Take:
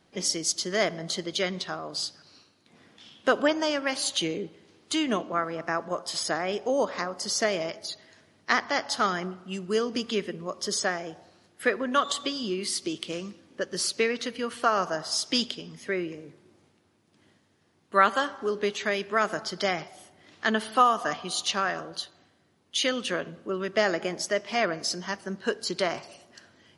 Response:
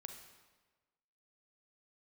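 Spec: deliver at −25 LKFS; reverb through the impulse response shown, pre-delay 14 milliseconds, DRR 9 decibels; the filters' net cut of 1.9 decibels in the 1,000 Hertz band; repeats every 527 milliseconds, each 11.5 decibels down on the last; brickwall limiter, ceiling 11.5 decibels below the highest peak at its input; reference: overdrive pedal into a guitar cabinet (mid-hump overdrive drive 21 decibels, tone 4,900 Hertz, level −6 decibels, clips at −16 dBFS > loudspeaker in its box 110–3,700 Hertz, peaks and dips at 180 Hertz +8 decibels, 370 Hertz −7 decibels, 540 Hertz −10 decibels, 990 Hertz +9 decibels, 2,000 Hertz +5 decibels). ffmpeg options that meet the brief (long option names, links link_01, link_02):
-filter_complex "[0:a]equalizer=frequency=1000:width_type=o:gain=-6.5,alimiter=limit=-19dB:level=0:latency=1,aecho=1:1:527|1054|1581:0.266|0.0718|0.0194,asplit=2[link_01][link_02];[1:a]atrim=start_sample=2205,adelay=14[link_03];[link_02][link_03]afir=irnorm=-1:irlink=0,volume=-4.5dB[link_04];[link_01][link_04]amix=inputs=2:normalize=0,asplit=2[link_05][link_06];[link_06]highpass=frequency=720:poles=1,volume=21dB,asoftclip=type=tanh:threshold=-16dB[link_07];[link_05][link_07]amix=inputs=2:normalize=0,lowpass=frequency=4900:poles=1,volume=-6dB,highpass=110,equalizer=frequency=180:width_type=q:width=4:gain=8,equalizer=frequency=370:width_type=q:width=4:gain=-7,equalizer=frequency=540:width_type=q:width=4:gain=-10,equalizer=frequency=990:width_type=q:width=4:gain=9,equalizer=frequency=2000:width_type=q:width=4:gain=5,lowpass=frequency=3700:width=0.5412,lowpass=frequency=3700:width=1.3066,volume=0.5dB"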